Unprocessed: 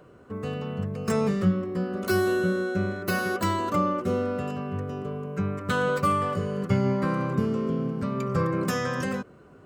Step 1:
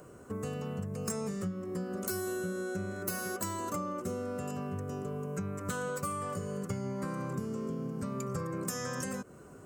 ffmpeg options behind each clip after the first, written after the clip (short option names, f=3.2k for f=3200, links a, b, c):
-af "highshelf=f=5.2k:t=q:w=1.5:g=12,acompressor=threshold=-34dB:ratio=5"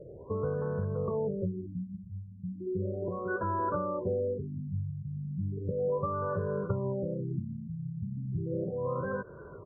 -af "aecho=1:1:2:0.64,afftfilt=real='re*lt(b*sr/1024,200*pow(1800/200,0.5+0.5*sin(2*PI*0.35*pts/sr)))':imag='im*lt(b*sr/1024,200*pow(1800/200,0.5+0.5*sin(2*PI*0.35*pts/sr)))':win_size=1024:overlap=0.75,volume=4dB"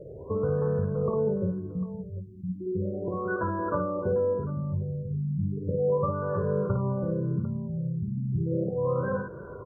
-af "aecho=1:1:55|748:0.562|0.158,volume=3.5dB"